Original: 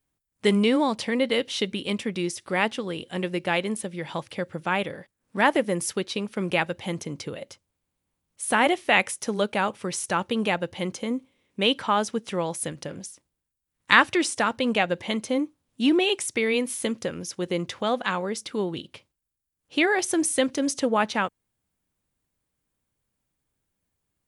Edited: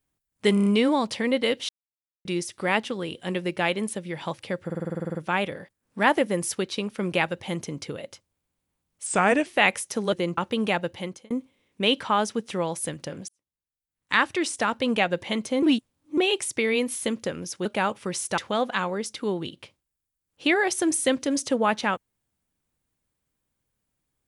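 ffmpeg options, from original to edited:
-filter_complex "[0:a]asplit=27[s0][s1][s2][s3][s4][s5][s6][s7][s8][s9][s10][s11][s12][s13][s14][s15][s16][s17][s18][s19][s20][s21][s22][s23][s24][s25][s26];[s0]atrim=end=0.572[s27];[s1]atrim=start=0.538:end=0.572[s28];[s2]atrim=start=0.538:end=0.572[s29];[s3]atrim=start=0.538:end=0.572[s30];[s4]atrim=start=0.538:end=1.57,asetpts=PTS-STARTPTS,afade=t=out:st=1.028:d=0.004:c=hsin[s31];[s5]atrim=start=1.57:end=2.13,asetpts=PTS-STARTPTS,volume=0[s32];[s6]atrim=start=2.13:end=4.582,asetpts=PTS-STARTPTS,afade=t=in:d=0.004:c=hsin[s33];[s7]atrim=start=4.528:end=4.582[s34];[s8]atrim=start=4.528:end=4.582[s35];[s9]atrim=start=4.528:end=4.582[s36];[s10]atrim=start=4.528:end=4.582[s37];[s11]atrim=start=4.528:end=4.582[s38];[s12]atrim=start=4.528:end=4.582[s39];[s13]atrim=start=4.528:end=4.582[s40];[s14]atrim=start=4.528:end=4.582[s41];[s15]atrim=start=4.528:end=4.582[s42];[s16]atrim=start=4.528:end=8.444[s43];[s17]atrim=start=8.44:end=8.78,asetpts=PTS-STARTPTS,asetrate=37044,aresample=44100[s44];[s18]atrim=start=8.776:end=9.442[s45];[s19]atrim=start=17.438:end=17.692[s46];[s20]atrim=start=10.158:end=11.09,asetpts=PTS-STARTPTS,afade=t=out:st=0.532:d=0.4[s47];[s21]atrim=start=11.09:end=13.07,asetpts=PTS-STARTPTS,afade=t=in:d=0.004:c=hsin,afade=t=out:st=1.976:d=0.004:c=hsin[s48];[s22]atrim=start=13.07:end=15.412,asetpts=PTS-STARTPTS,afade=t=in:d=1.55[s49];[s23]atrim=start=15.408:end=15.962,asetpts=PTS-STARTPTS,areverse[s50];[s24]atrim=start=15.958:end=17.442[s51];[s25]atrim=start=9.438:end=10.162[s52];[s26]atrim=start=17.688[s53];[s27][s28]acrossfade=d=0.004:c1=hsin:c2=hsin[s54];[s54][s29]acrossfade=d=0.004:c1=hsin:c2=hsin[s55];[s55][s30]acrossfade=d=0.004:c1=hsin:c2=hsin[s56];[s31][s32][s33]concat=n=3:v=0:a=1[s57];[s56][s57]acrossfade=d=0.004:c1=hsin:c2=hsin[s58];[s58][s34]acrossfade=d=0.004:c1=hsin:c2=hsin[s59];[s59][s35]acrossfade=d=0.004:c1=hsin:c2=hsin[s60];[s60][s36]acrossfade=d=0.004:c1=hsin:c2=hsin[s61];[s61][s37]acrossfade=d=0.004:c1=hsin:c2=hsin[s62];[s62][s38]acrossfade=d=0.004:c1=hsin:c2=hsin[s63];[s63][s39]acrossfade=d=0.004:c1=hsin:c2=hsin[s64];[s64][s40]acrossfade=d=0.004:c1=hsin:c2=hsin[s65];[s65][s41]acrossfade=d=0.004:c1=hsin:c2=hsin[s66];[s66][s42]acrossfade=d=0.004:c1=hsin:c2=hsin[s67];[s67][s43]acrossfade=d=0.004:c1=hsin:c2=hsin[s68];[s68][s44]acrossfade=d=0.004:c1=hsin:c2=hsin[s69];[s69][s45]acrossfade=d=0.004:c1=hsin:c2=hsin[s70];[s70][s46]acrossfade=d=0.004:c1=hsin:c2=hsin[s71];[s47][s48][s49]concat=n=3:v=0:a=1[s72];[s71][s72]acrossfade=d=0.004:c1=hsin:c2=hsin[s73];[s73][s50]acrossfade=d=0.004:c1=hsin:c2=hsin[s74];[s74][s51]acrossfade=d=0.004:c1=hsin:c2=hsin[s75];[s75][s52]acrossfade=d=0.004:c1=hsin:c2=hsin[s76];[s76][s53]acrossfade=d=0.004:c1=hsin:c2=hsin"

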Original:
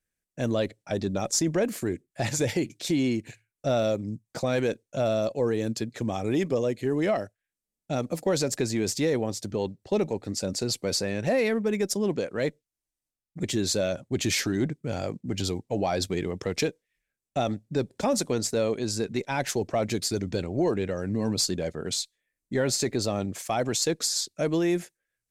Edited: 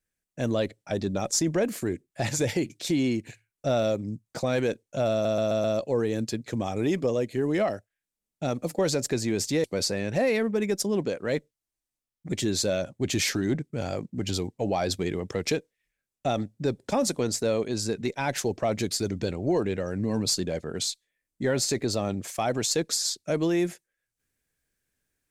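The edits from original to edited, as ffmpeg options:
-filter_complex "[0:a]asplit=6[s0][s1][s2][s3][s4][s5];[s0]atrim=end=5.252[s6];[s1]atrim=start=5.118:end=5.252[s7];[s2]atrim=start=5.118:end=5.252[s8];[s3]atrim=start=5.118:end=5.252[s9];[s4]atrim=start=5.118:end=9.122[s10];[s5]atrim=start=10.748[s11];[s6][s7]acrossfade=d=0.004:c1=hsin:c2=hsin[s12];[s12][s8]acrossfade=d=0.004:c1=hsin:c2=hsin[s13];[s13][s9]acrossfade=d=0.004:c1=hsin:c2=hsin[s14];[s14][s10]acrossfade=d=0.004:c1=hsin:c2=hsin[s15];[s15][s11]acrossfade=d=0.004:c1=hsin:c2=hsin"

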